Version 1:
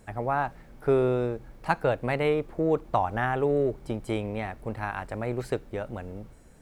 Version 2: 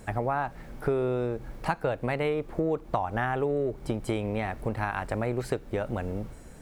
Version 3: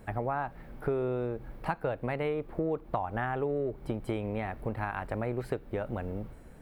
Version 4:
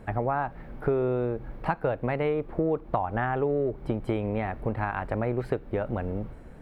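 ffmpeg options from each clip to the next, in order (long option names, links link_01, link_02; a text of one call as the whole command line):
ffmpeg -i in.wav -af "acompressor=threshold=-33dB:ratio=4,volume=7dB" out.wav
ffmpeg -i in.wav -af "equalizer=frequency=6700:width_type=o:width=1.3:gain=-12,volume=-3.5dB" out.wav
ffmpeg -i in.wav -af "lowpass=frequency=2800:poles=1,volume=5dB" out.wav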